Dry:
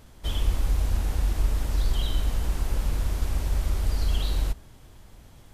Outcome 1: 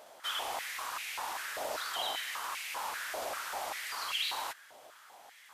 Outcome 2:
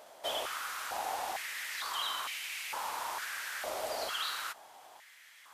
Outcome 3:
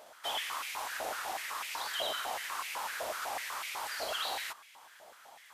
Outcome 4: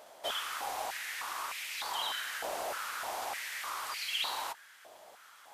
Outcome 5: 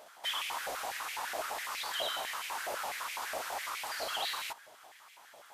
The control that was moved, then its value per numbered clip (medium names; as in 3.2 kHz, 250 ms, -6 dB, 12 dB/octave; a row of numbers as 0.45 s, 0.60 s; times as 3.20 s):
step-sequenced high-pass, rate: 5.1 Hz, 2.2 Hz, 8 Hz, 3.3 Hz, 12 Hz